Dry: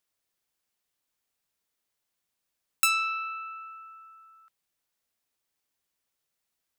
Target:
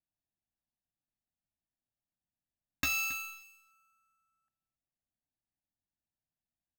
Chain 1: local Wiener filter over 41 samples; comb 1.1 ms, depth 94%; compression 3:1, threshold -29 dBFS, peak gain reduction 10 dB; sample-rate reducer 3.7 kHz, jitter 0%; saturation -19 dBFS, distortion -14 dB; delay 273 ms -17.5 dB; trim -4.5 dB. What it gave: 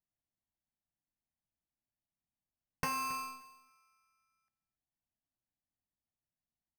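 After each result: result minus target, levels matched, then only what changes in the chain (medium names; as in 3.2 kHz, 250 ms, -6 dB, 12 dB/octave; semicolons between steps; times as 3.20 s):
compression: peak gain reduction +4.5 dB; sample-rate reducer: distortion +4 dB
change: compression 3:1, threshold -22 dBFS, peak gain reduction 5 dB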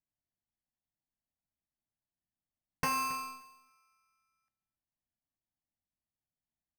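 sample-rate reducer: distortion +4 dB
change: sample-rate reducer 9.2 kHz, jitter 0%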